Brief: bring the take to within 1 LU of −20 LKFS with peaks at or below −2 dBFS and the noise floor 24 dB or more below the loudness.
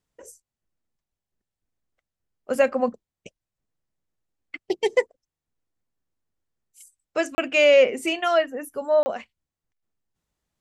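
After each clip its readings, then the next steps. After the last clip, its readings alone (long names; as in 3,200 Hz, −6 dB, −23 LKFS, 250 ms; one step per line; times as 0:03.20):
number of dropouts 2; longest dropout 30 ms; integrated loudness −22.0 LKFS; sample peak −7.0 dBFS; target loudness −20.0 LKFS
→ repair the gap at 0:07.35/0:09.03, 30 ms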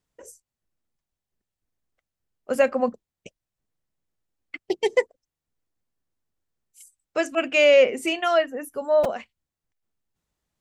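number of dropouts 0; integrated loudness −22.0 LKFS; sample peak −7.0 dBFS; target loudness −20.0 LKFS
→ level +2 dB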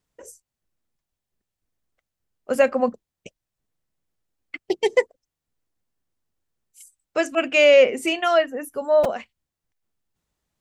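integrated loudness −20.0 LKFS; sample peak −5.0 dBFS; background noise floor −86 dBFS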